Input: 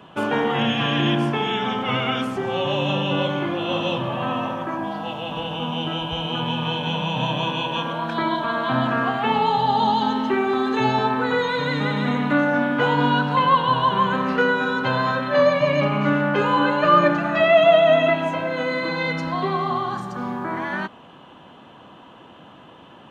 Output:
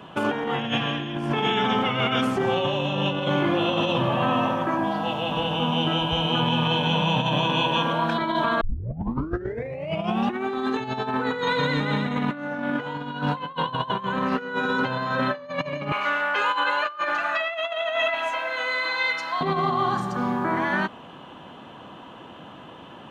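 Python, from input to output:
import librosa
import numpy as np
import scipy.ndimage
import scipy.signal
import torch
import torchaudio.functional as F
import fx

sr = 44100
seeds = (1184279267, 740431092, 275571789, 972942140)

y = fx.highpass(x, sr, hz=1000.0, slope=12, at=(15.92, 19.41))
y = fx.edit(y, sr, fx.tape_start(start_s=8.61, length_s=1.82), tone=tone)
y = fx.over_compress(y, sr, threshold_db=-24.0, ratio=-0.5)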